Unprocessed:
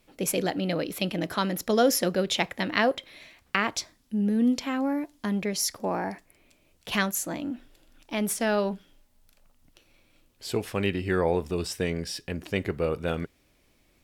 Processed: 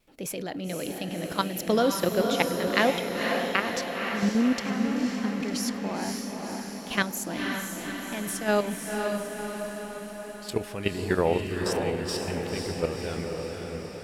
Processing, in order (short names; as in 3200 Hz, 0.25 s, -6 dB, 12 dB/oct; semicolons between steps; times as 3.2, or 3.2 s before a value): vibrato 1.4 Hz 19 cents; level quantiser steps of 12 dB; diffused feedback echo 0.518 s, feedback 63%, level -3.5 dB; gain +2.5 dB